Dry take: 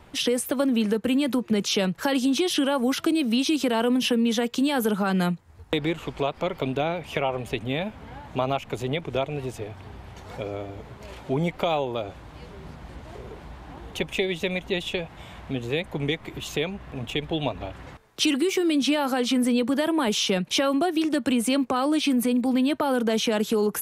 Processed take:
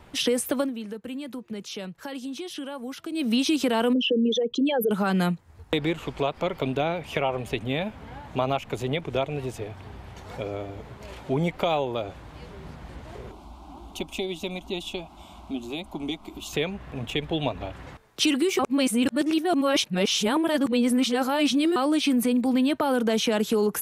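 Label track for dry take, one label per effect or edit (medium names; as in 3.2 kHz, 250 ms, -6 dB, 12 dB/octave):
0.570000	3.270000	dip -12 dB, fades 0.16 s
3.930000	4.910000	resonances exaggerated exponent 3
13.310000	16.530000	static phaser centre 480 Hz, stages 6
18.590000	21.760000	reverse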